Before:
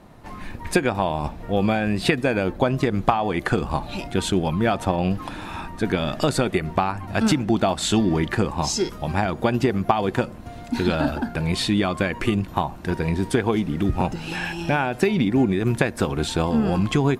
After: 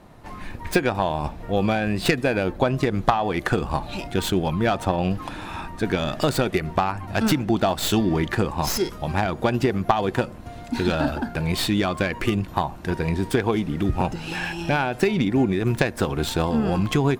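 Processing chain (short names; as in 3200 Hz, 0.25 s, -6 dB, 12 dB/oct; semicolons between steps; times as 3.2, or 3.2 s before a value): tracing distortion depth 0.076 ms; bell 220 Hz -2 dB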